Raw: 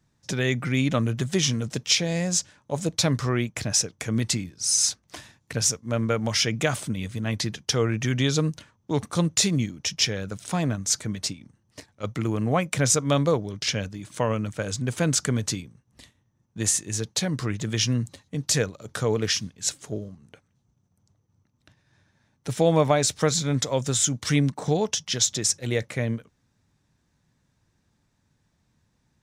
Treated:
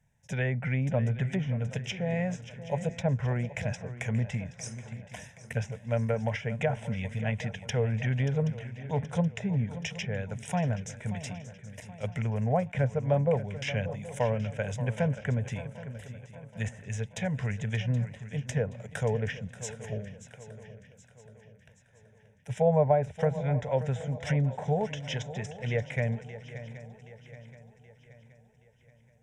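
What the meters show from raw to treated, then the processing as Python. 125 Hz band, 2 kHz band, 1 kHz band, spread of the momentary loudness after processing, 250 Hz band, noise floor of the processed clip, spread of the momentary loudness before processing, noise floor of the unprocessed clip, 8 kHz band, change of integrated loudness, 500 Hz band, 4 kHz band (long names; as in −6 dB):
−2.0 dB, −5.5 dB, −4.0 dB, 15 LU, −6.5 dB, −60 dBFS, 10 LU, −70 dBFS, −22.0 dB, −6.0 dB, −3.0 dB, −17.5 dB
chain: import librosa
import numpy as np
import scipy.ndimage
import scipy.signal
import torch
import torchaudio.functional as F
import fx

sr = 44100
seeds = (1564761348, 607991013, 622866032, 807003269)

p1 = fx.env_lowpass_down(x, sr, base_hz=940.0, full_db=-18.5)
p2 = fx.fixed_phaser(p1, sr, hz=1200.0, stages=6)
p3 = p2 + fx.echo_swing(p2, sr, ms=775, ratio=3, feedback_pct=46, wet_db=-14.0, dry=0)
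y = fx.attack_slew(p3, sr, db_per_s=550.0)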